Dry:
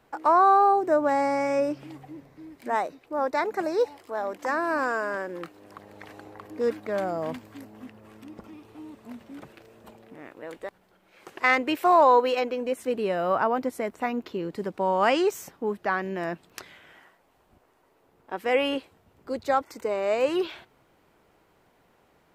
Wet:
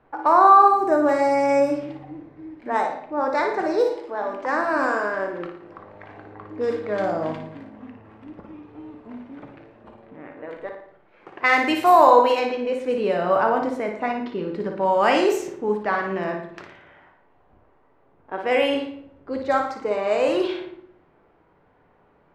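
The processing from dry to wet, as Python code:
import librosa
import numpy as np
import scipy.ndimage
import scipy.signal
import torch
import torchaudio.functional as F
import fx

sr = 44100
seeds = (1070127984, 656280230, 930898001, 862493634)

y = fx.high_shelf(x, sr, hz=7900.0, db=11.5, at=(11.57, 12.1))
y = fx.room_flutter(y, sr, wall_m=9.8, rt60_s=0.55)
y = fx.room_shoebox(y, sr, seeds[0], volume_m3=97.0, walls='mixed', distance_m=0.39)
y = fx.env_lowpass(y, sr, base_hz=1800.0, full_db=-16.5)
y = y * librosa.db_to_amplitude(2.0)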